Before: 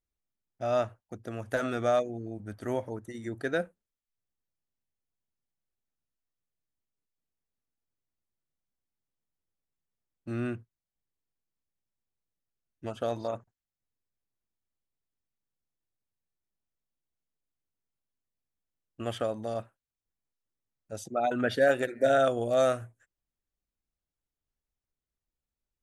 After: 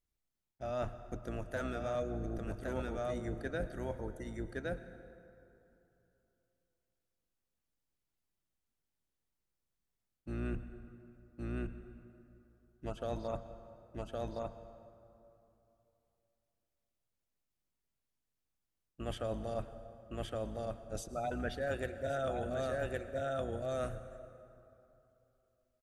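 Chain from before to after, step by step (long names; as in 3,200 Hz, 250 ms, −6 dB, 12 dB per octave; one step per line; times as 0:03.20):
sub-octave generator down 2 octaves, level 0 dB
single-tap delay 1,115 ms −4.5 dB
reversed playback
downward compressor 5 to 1, threshold −35 dBFS, peak gain reduction 15 dB
reversed playback
pitch vibrato 3.9 Hz 13 cents
dense smooth reverb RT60 3 s, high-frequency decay 0.55×, pre-delay 95 ms, DRR 12 dB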